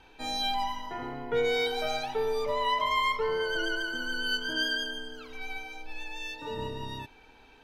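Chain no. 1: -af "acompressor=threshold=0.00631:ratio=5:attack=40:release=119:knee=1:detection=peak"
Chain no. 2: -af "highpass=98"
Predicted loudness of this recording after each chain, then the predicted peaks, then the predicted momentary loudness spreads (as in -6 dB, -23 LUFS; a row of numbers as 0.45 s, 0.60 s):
-42.5 LUFS, -30.5 LUFS; -28.0 dBFS, -17.0 dBFS; 5 LU, 14 LU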